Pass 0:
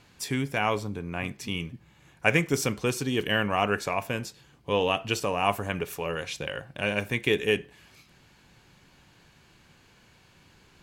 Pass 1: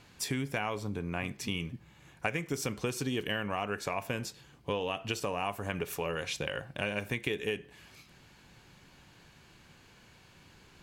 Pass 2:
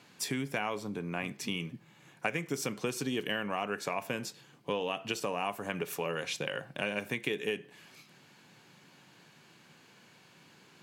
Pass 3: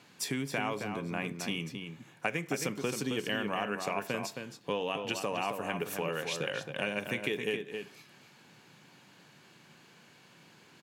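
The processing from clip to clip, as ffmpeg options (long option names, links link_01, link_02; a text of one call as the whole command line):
ffmpeg -i in.wav -af "acompressor=threshold=-29dB:ratio=10" out.wav
ffmpeg -i in.wav -af "highpass=frequency=140:width=0.5412,highpass=frequency=140:width=1.3066" out.wav
ffmpeg -i in.wav -filter_complex "[0:a]asplit=2[link_01][link_02];[link_02]adelay=268.2,volume=-6dB,highshelf=frequency=4000:gain=-6.04[link_03];[link_01][link_03]amix=inputs=2:normalize=0" out.wav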